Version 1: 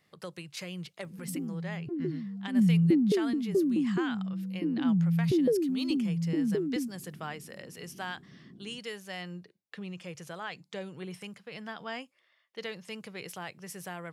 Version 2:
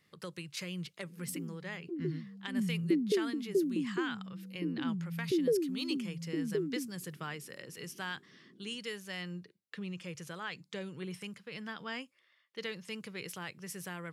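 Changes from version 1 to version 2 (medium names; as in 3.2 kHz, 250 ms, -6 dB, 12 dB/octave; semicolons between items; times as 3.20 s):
background: add band-pass filter 460 Hz, Q 1.7; master: add peaking EQ 710 Hz -9 dB 0.65 oct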